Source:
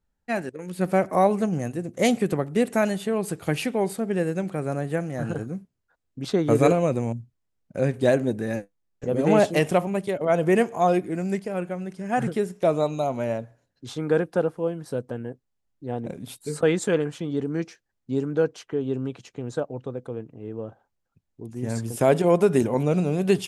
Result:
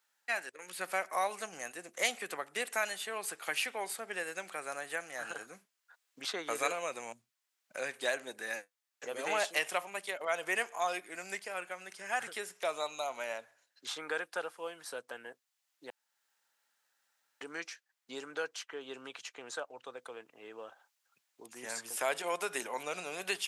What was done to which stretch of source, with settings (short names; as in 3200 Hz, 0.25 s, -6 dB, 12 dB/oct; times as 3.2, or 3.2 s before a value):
15.9–17.41 room tone
whole clip: HPF 1300 Hz 12 dB/oct; three-band squash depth 40%